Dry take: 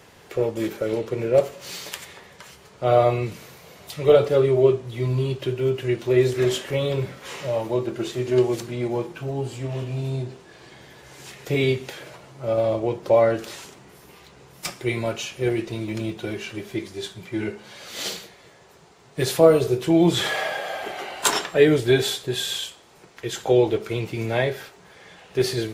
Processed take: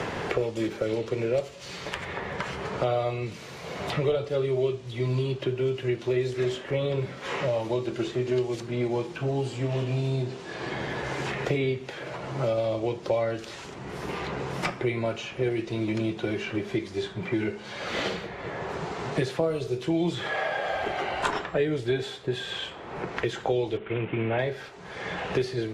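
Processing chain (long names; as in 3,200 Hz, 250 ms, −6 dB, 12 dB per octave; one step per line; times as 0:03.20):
0:23.77–0:24.39: variable-slope delta modulation 16 kbit/s
high-frequency loss of the air 72 metres
multiband upward and downward compressor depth 100%
level −4.5 dB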